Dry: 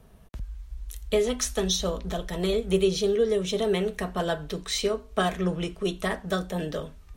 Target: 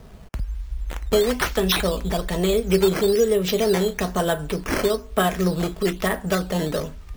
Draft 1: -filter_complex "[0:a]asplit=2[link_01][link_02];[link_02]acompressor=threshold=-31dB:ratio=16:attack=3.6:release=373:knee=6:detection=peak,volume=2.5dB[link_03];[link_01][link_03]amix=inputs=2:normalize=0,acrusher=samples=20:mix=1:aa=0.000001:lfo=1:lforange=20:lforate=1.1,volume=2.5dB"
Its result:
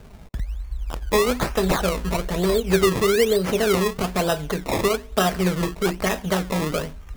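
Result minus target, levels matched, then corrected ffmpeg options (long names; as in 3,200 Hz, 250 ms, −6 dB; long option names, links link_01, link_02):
sample-and-hold swept by an LFO: distortion +5 dB
-filter_complex "[0:a]asplit=2[link_01][link_02];[link_02]acompressor=threshold=-31dB:ratio=16:attack=3.6:release=373:knee=6:detection=peak,volume=2.5dB[link_03];[link_01][link_03]amix=inputs=2:normalize=0,acrusher=samples=8:mix=1:aa=0.000001:lfo=1:lforange=8:lforate=1.1,volume=2.5dB"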